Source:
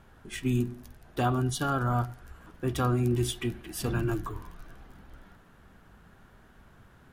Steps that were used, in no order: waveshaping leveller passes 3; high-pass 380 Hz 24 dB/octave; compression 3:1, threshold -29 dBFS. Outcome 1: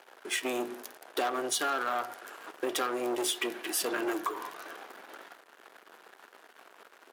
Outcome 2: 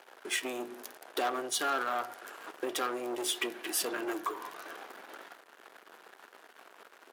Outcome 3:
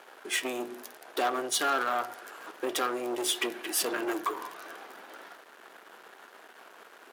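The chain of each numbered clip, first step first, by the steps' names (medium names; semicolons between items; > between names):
waveshaping leveller > high-pass > compression; waveshaping leveller > compression > high-pass; compression > waveshaping leveller > high-pass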